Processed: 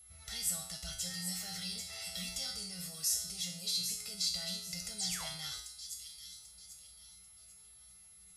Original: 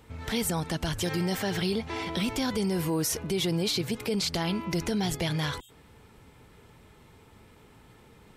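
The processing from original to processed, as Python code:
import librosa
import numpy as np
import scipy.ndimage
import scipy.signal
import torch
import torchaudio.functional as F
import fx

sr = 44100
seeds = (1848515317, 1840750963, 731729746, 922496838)

p1 = x + 0.93 * np.pad(x, (int(1.5 * sr / 1000.0), 0))[:len(x)]
p2 = fx.echo_wet_highpass(p1, sr, ms=791, feedback_pct=34, hz=4200.0, wet_db=-6.5)
p3 = fx.rider(p2, sr, range_db=3, speed_s=0.5)
p4 = p2 + F.gain(torch.from_numpy(p3), 2.5).numpy()
p5 = p4 + 10.0 ** (-40.0 / 20.0) * np.sin(2.0 * np.pi * 11000.0 * np.arange(len(p4)) / sr)
p6 = fx.tone_stack(p5, sr, knobs='5-5-5')
p7 = fx.spec_paint(p6, sr, seeds[0], shape='fall', start_s=4.98, length_s=0.29, low_hz=550.0, high_hz=9900.0, level_db=-33.0)
p8 = fx.band_shelf(p7, sr, hz=6700.0, db=9.5, octaves=1.7)
p9 = fx.comb_fb(p8, sr, f0_hz=60.0, decay_s=0.6, harmonics='odd', damping=0.0, mix_pct=90)
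y = F.gain(torch.from_numpy(p9), -2.0).numpy()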